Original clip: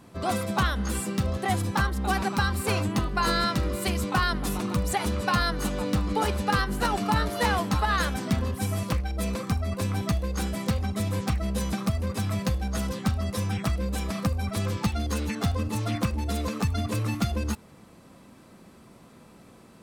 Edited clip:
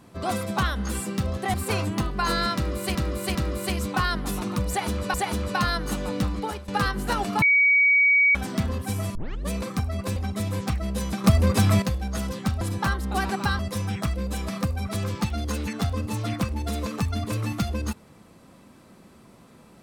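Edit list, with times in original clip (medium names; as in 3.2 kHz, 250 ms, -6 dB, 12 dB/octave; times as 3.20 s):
1.54–2.52 s: move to 13.21 s
3.53–3.93 s: loop, 3 plays
4.87–5.32 s: loop, 2 plays
6.01–6.41 s: fade out, to -18 dB
7.15–8.08 s: bleep 2.26 kHz -15 dBFS
8.88 s: tape start 0.35 s
9.89–10.76 s: delete
11.84–12.42 s: gain +9 dB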